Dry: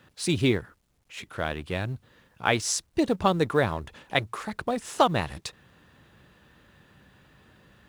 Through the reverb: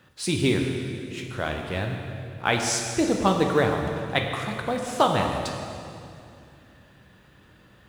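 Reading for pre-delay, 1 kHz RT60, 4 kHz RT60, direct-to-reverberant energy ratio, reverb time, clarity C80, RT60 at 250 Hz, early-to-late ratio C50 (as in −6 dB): 8 ms, 2.4 s, 2.2 s, 2.0 dB, 2.5 s, 4.5 dB, 3.1 s, 3.5 dB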